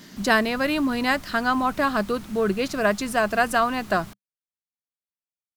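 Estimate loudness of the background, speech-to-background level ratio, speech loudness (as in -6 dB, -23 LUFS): -43.0 LUFS, 20.0 dB, -23.0 LUFS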